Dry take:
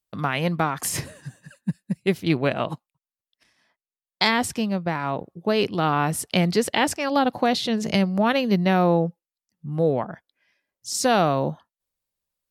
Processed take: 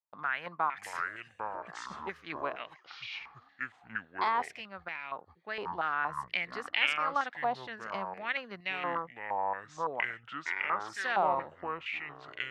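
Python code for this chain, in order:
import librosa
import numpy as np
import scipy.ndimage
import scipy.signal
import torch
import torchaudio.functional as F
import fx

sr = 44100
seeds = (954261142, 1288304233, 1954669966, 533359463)

y = fx.self_delay(x, sr, depth_ms=0.33, at=(8.95, 9.87))
y = fx.echo_pitch(y, sr, ms=503, semitones=-7, count=2, db_per_echo=-3.0)
y = fx.filter_held_bandpass(y, sr, hz=4.3, low_hz=920.0, high_hz=2400.0)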